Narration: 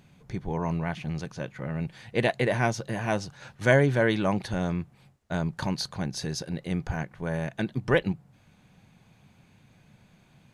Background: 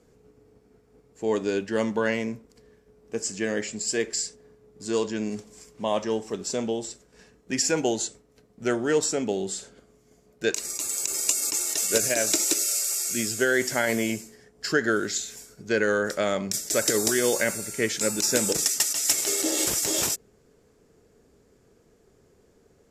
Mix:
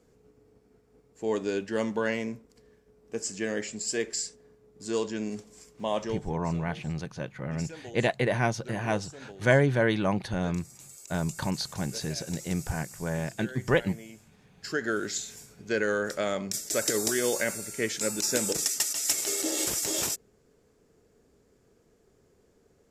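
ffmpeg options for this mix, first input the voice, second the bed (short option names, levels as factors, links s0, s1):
-filter_complex "[0:a]adelay=5800,volume=0.891[s0];[1:a]volume=4.22,afade=t=out:st=6.03:d=0.3:silence=0.149624,afade=t=in:st=14.25:d=0.81:silence=0.158489[s1];[s0][s1]amix=inputs=2:normalize=0"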